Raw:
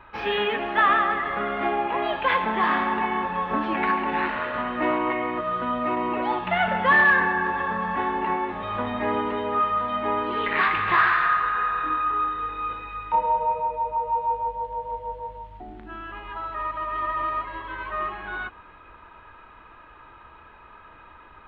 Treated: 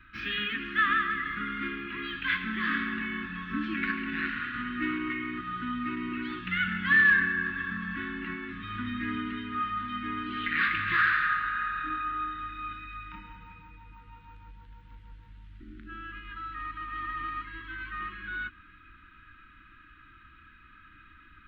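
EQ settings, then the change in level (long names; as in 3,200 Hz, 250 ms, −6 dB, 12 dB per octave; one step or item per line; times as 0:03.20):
elliptic band-stop filter 300–1,400 Hz, stop band 60 dB
−2.0 dB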